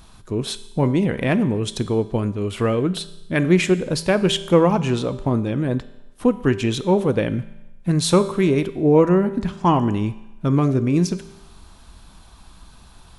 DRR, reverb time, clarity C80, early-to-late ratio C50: 12.0 dB, 0.95 s, 17.0 dB, 15.0 dB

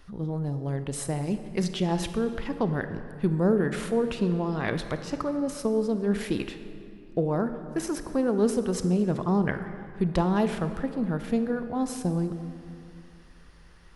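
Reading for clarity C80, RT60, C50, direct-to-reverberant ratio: 11.0 dB, 2.6 s, 9.5 dB, 9.0 dB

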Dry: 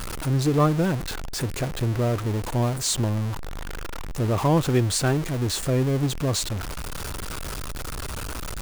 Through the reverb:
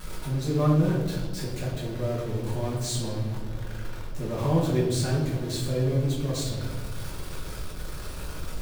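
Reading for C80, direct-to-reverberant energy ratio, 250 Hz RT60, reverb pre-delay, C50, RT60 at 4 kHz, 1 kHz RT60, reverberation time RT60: 5.5 dB, −5.5 dB, 2.2 s, 5 ms, 3.5 dB, 0.90 s, 1.2 s, 1.4 s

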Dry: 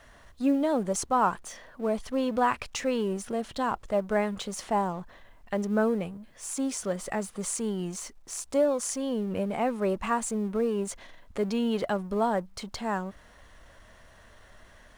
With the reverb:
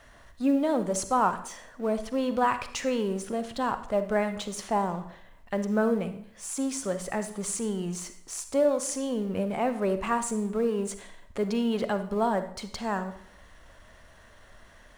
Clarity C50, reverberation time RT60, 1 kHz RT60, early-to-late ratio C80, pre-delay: 11.0 dB, 0.60 s, 0.65 s, 14.5 dB, 34 ms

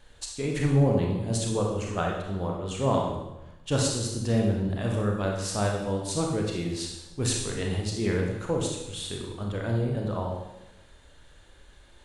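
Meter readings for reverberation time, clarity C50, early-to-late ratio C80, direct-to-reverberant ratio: 1.0 s, 2.5 dB, 5.0 dB, −0.5 dB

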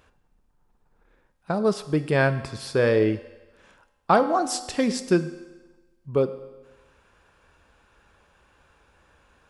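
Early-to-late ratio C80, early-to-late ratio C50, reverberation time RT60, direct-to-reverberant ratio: 15.0 dB, 13.5 dB, 1.2 s, 11.0 dB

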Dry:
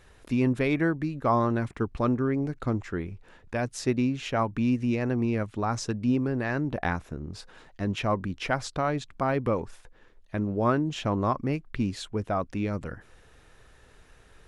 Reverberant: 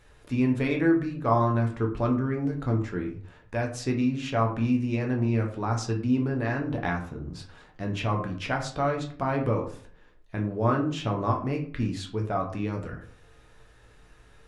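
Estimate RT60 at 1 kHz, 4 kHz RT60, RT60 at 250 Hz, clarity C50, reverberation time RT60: 0.45 s, 0.30 s, 0.55 s, 9.0 dB, 0.50 s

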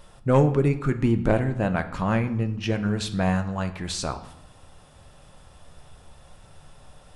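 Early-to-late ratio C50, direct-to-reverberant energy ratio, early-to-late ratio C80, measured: 12.5 dB, 7.5 dB, 16.0 dB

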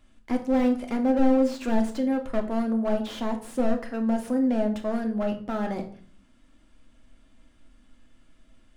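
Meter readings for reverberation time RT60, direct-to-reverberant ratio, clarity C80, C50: 0.50 s, 3.5 dB, 16.0 dB, 12.0 dB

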